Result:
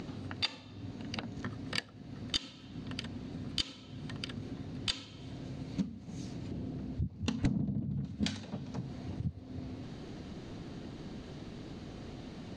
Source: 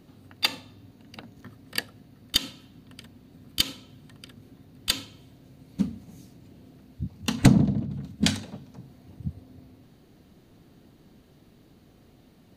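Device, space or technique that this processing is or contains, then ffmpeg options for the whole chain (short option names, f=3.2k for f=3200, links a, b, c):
upward and downward compression: -filter_complex "[0:a]lowpass=f=6.9k:w=0.5412,lowpass=f=6.9k:w=1.3066,asettb=1/sr,asplit=3[a][b][c];[a]atrim=end=6.514[d];[b]atrim=start=6.51:end=8.05,asetpts=PTS-STARTPTS,afade=t=in:d=0.004:c=qsin,afade=t=out:st=1.536:d=0.004:c=qsin,tiltshelf=f=670:g=4.5[e];[c]atrim=start=8.046[f];[d][e]acrossfade=d=0.004:c1=hsin:c2=qsin[g];[g][f]acrossfade=d=0.004:c1=qsin:c2=hsin,acompressor=mode=upward:threshold=-49dB:ratio=2.5,acompressor=threshold=-44dB:ratio=4,volume=9dB"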